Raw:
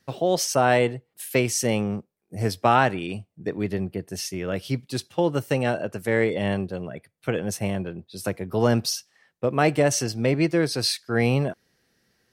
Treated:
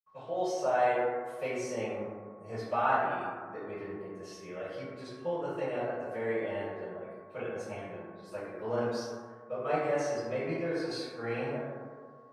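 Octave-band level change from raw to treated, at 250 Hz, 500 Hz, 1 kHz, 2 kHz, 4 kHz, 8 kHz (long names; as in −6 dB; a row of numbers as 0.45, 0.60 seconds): −13.5, −7.5, −6.5, −10.0, −17.5, −20.5 decibels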